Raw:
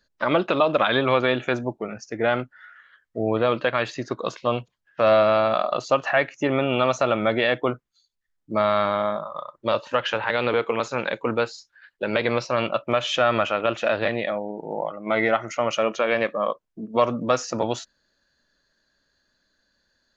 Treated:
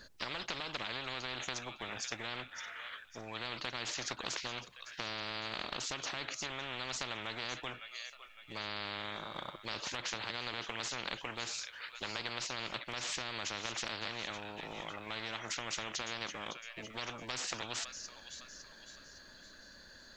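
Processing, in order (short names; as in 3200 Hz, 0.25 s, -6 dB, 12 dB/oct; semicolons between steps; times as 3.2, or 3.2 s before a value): compressor 2:1, threshold -28 dBFS, peak gain reduction 8.5 dB; thin delay 0.558 s, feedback 43%, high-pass 2900 Hz, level -21 dB; spectral compressor 10:1; gain -7.5 dB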